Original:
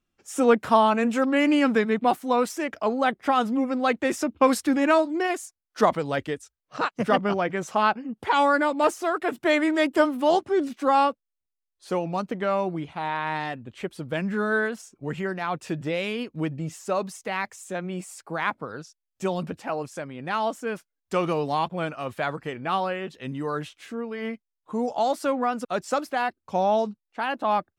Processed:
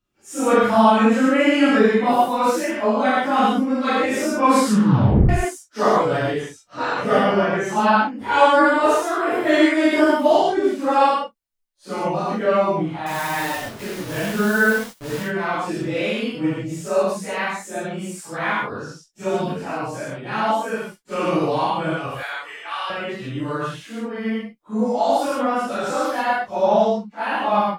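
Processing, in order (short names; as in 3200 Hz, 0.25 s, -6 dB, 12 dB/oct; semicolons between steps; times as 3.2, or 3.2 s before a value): phase scrambler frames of 0.1 s; 4.53 tape stop 0.76 s; 13.06–15.16 requantised 6-bit, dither none; 22.07–22.9 HPF 1300 Hz 12 dB/oct; non-linear reverb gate 0.17 s flat, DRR -6.5 dB; gain -2 dB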